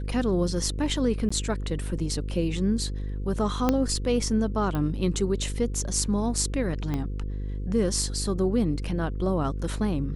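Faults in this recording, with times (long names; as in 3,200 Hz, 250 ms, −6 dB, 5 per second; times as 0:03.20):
mains buzz 50 Hz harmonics 10 −31 dBFS
0:01.29–0:01.30: drop-out 15 ms
0:03.69: click −9 dBFS
0:04.75: click −18 dBFS
0:06.94: click −17 dBFS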